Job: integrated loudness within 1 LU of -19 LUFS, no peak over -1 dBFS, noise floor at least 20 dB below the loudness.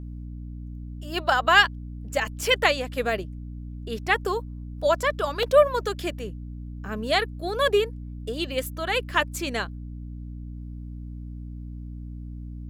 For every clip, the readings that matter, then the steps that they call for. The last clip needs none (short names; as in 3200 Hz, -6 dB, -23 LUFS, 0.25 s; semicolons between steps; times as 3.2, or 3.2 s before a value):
dropouts 2; longest dropout 1.7 ms; hum 60 Hz; harmonics up to 300 Hz; hum level -34 dBFS; loudness -24.5 LUFS; peak -4.5 dBFS; loudness target -19.0 LUFS
-> interpolate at 2.43/5.43, 1.7 ms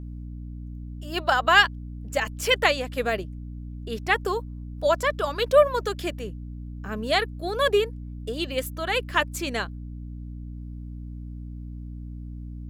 dropouts 0; hum 60 Hz; harmonics up to 300 Hz; hum level -34 dBFS
-> de-hum 60 Hz, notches 5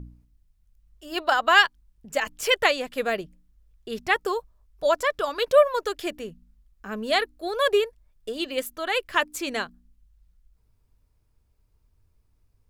hum none; loudness -24.5 LUFS; peak -5.0 dBFS; loudness target -19.0 LUFS
-> gain +5.5 dB; limiter -1 dBFS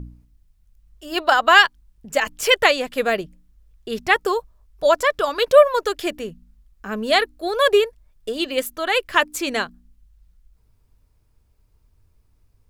loudness -19.0 LUFS; peak -1.0 dBFS; noise floor -61 dBFS